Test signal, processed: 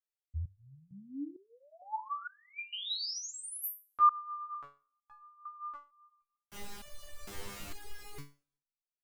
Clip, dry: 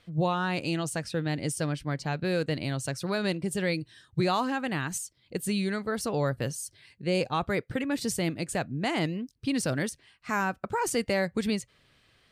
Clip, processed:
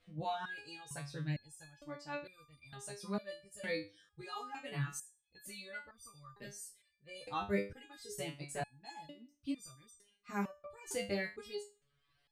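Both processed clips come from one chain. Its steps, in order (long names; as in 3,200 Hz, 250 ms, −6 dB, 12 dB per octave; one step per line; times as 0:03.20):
coupled-rooms reverb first 0.66 s, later 1.8 s, from −25 dB, DRR 14 dB
reverb reduction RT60 0.91 s
multi-voice chorus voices 6, 0.47 Hz, delay 14 ms, depth 1.8 ms
step-sequenced resonator 2.2 Hz 100–1,200 Hz
level +4.5 dB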